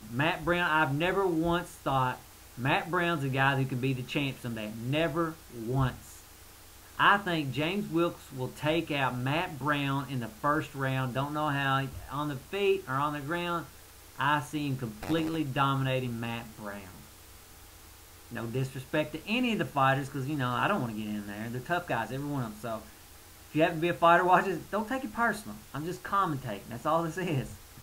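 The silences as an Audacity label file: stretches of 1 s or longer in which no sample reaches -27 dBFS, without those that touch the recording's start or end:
5.890000	7.000000	silence
16.690000	18.370000	silence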